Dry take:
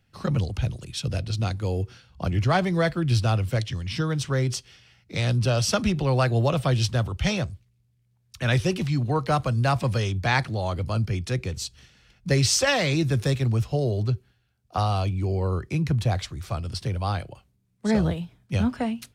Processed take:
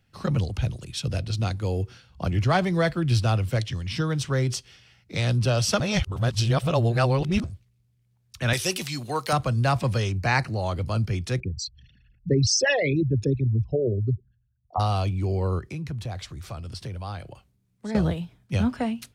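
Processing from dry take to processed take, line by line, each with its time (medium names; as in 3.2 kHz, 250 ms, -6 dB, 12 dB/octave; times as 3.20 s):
5.80–7.44 s: reverse
8.53–9.33 s: RIAA curve recording
10.09–10.64 s: Butterworth band-stop 3.4 kHz, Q 4.3
11.40–14.80 s: resonances exaggerated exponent 3
15.59–17.95 s: compression 2:1, threshold -36 dBFS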